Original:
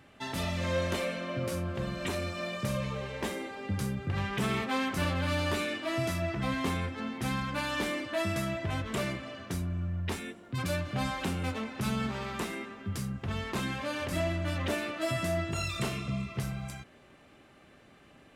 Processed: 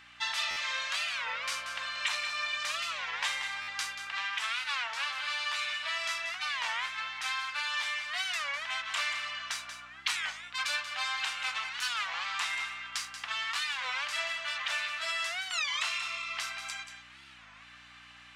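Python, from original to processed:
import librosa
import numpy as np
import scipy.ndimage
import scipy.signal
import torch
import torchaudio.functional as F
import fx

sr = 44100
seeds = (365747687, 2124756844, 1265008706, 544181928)

p1 = scipy.signal.sosfilt(scipy.signal.butter(4, 930.0, 'highpass', fs=sr, output='sos'), x)
p2 = fx.air_absorb(p1, sr, metres=140.0)
p3 = fx.add_hum(p2, sr, base_hz=60, snr_db=17)
p4 = p3 + fx.echo_single(p3, sr, ms=184, db=-10.0, dry=0)
p5 = fx.rider(p4, sr, range_db=4, speed_s=0.5)
p6 = fx.tilt_eq(p5, sr, slope=4.5)
p7 = fx.buffer_glitch(p6, sr, at_s=(0.5, 3.61), block=512, repeats=5)
p8 = fx.record_warp(p7, sr, rpm=33.33, depth_cents=250.0)
y = p8 * librosa.db_to_amplitude(2.5)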